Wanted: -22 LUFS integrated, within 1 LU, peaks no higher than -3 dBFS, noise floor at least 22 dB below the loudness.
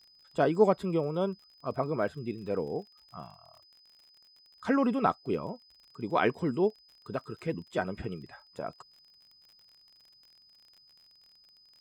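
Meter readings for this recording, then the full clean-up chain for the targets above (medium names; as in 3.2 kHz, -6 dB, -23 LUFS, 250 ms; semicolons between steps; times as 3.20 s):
tick rate 44 per s; steady tone 5 kHz; tone level -58 dBFS; loudness -31.5 LUFS; peak level -10.0 dBFS; loudness target -22.0 LUFS
-> de-click; band-stop 5 kHz, Q 30; trim +9.5 dB; peak limiter -3 dBFS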